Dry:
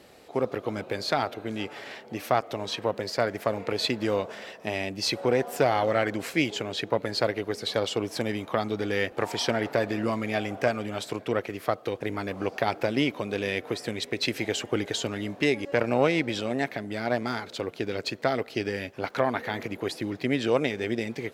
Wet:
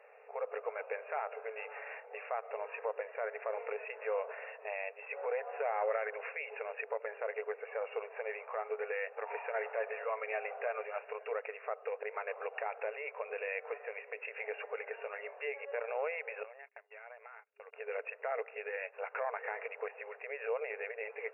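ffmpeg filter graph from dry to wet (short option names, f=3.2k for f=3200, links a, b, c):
-filter_complex "[0:a]asettb=1/sr,asplit=3[a][b][c];[a]atrim=end=16.434[d];[b]atrim=start=16.43:end=17.73,asetpts=PTS-STARTPTS,afade=t=in:d=0.004:c=qsin,afade=t=out:st=1.296:d=0.004:c=qsin,agate=range=-32dB:threshold=-34dB:ratio=16:release=100:detection=peak,highpass=f=1.1k:p=1,acompressor=threshold=-42dB:ratio=12:attack=3.2:release=140:knee=1:detection=peak[e];[c]atrim=start=17.726[f];[d][e]acrossfade=d=0.004:c1=hsin:c2=qsin[g];[g][f]acrossfade=d=0.004:c1=qsin:c2=hsin,alimiter=limit=-20dB:level=0:latency=1:release=84,afftfilt=real='re*between(b*sr/4096,410,2800)':imag='im*between(b*sr/4096,410,2800)':win_size=4096:overlap=0.75,volume=-3.5dB"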